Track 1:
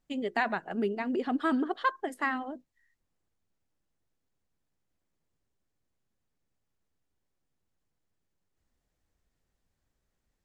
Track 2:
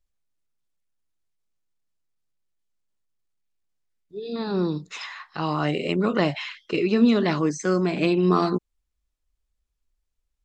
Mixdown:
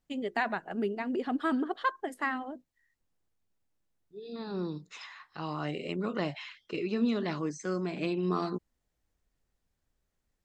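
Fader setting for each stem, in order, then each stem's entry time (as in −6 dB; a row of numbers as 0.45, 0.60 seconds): −1.5, −10.5 decibels; 0.00, 0.00 seconds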